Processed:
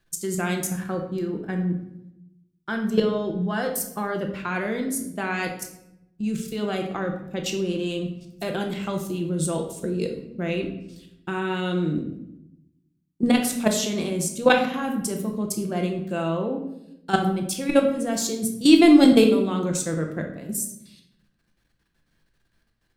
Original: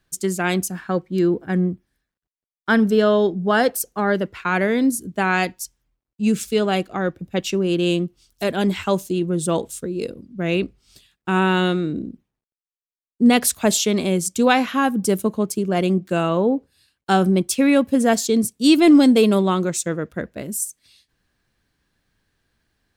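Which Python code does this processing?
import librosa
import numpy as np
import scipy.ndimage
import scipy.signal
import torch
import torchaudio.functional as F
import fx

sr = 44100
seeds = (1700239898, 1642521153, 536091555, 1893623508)

y = fx.level_steps(x, sr, step_db=14)
y = fx.room_shoebox(y, sr, seeds[0], volume_m3=240.0, walls='mixed', distance_m=0.79)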